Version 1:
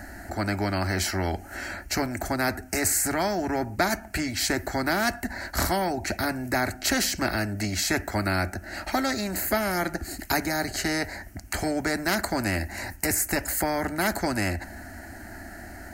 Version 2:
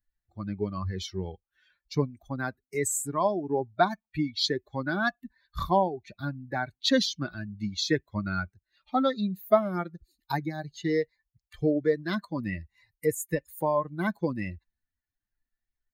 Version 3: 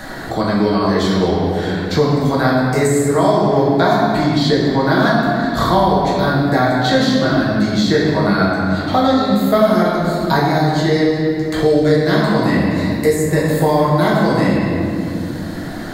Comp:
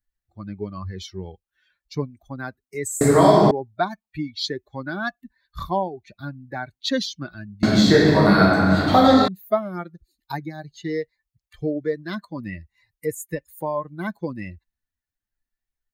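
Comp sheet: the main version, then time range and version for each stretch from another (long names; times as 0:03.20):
2
0:03.01–0:03.51: punch in from 3
0:07.63–0:09.28: punch in from 3
not used: 1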